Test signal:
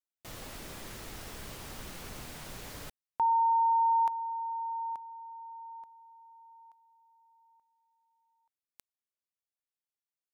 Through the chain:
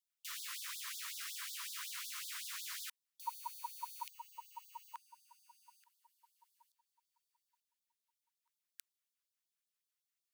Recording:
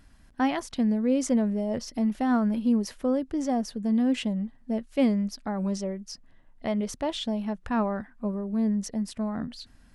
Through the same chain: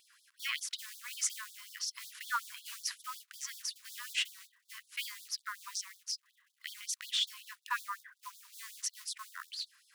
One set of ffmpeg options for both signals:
-af "acrusher=bits=7:mode=log:mix=0:aa=0.000001,afftfilt=real='re*gte(b*sr/1024,940*pow(3400/940,0.5+0.5*sin(2*PI*5.4*pts/sr)))':imag='im*gte(b*sr/1024,940*pow(3400/940,0.5+0.5*sin(2*PI*5.4*pts/sr)))':win_size=1024:overlap=0.75,volume=3.5dB"

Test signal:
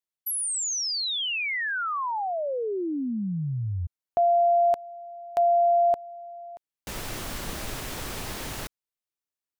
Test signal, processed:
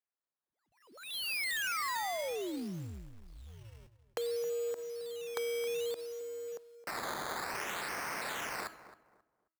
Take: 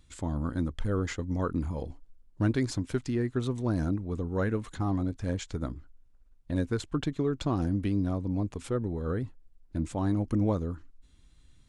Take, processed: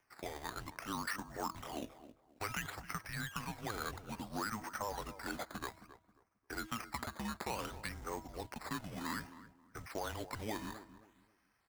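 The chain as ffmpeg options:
-filter_complex "[0:a]equalizer=f=230:t=o:w=1.6:g=-13,acrossover=split=320|1100[a][b][c];[a]asoftclip=type=hard:threshold=-34dB[d];[c]dynaudnorm=f=240:g=7:m=8dB[e];[d][b][e]amix=inputs=3:normalize=0,highpass=f=180:t=q:w=0.5412,highpass=f=180:t=q:w=1.307,lowpass=f=2.5k:t=q:w=0.5176,lowpass=f=2.5k:t=q:w=0.7071,lowpass=f=2.5k:t=q:w=1.932,afreqshift=-220,bandreject=f=322:t=h:w=4,bandreject=f=644:t=h:w=4,bandreject=f=966:t=h:w=4,bandreject=f=1.288k:t=h:w=4,bandreject=f=1.61k:t=h:w=4,acompressor=threshold=-39dB:ratio=4:attack=14:release=37:knee=1:detection=rms,acrusher=samples=11:mix=1:aa=0.000001:lfo=1:lforange=11:lforate=0.59,lowshelf=f=83:g=-11.5,asplit=2[f][g];[g]adelay=268,lowpass=f=1.3k:p=1,volume=-13dB,asplit=2[h][i];[i]adelay=268,lowpass=f=1.3k:p=1,volume=0.29,asplit=2[j][k];[k]adelay=268,lowpass=f=1.3k:p=1,volume=0.29[l];[f][h][j][l]amix=inputs=4:normalize=0,acrusher=bits=4:mode=log:mix=0:aa=0.000001,volume=1dB"

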